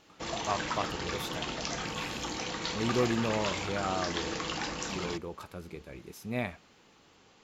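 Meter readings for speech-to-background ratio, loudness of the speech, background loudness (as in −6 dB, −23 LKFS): −1.0 dB, −36.0 LKFS, −35.0 LKFS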